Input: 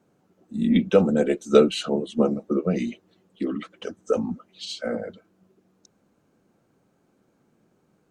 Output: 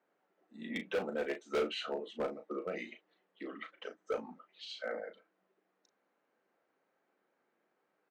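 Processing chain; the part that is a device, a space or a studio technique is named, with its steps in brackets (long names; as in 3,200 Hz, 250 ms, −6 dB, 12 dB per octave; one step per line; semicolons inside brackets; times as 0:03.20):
megaphone (band-pass filter 550–3,300 Hz; parametric band 1,900 Hz +7 dB 0.31 octaves; hard clipping −21.5 dBFS, distortion −7 dB; double-tracking delay 36 ms −8.5 dB)
level −7.5 dB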